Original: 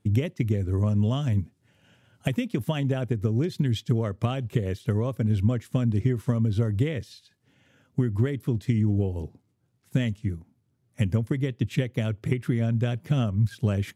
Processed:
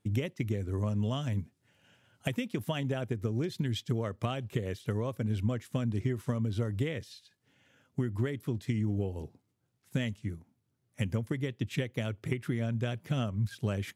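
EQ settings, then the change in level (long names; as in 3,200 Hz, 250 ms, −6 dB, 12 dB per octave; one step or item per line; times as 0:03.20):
low-shelf EQ 390 Hz −6 dB
−2.5 dB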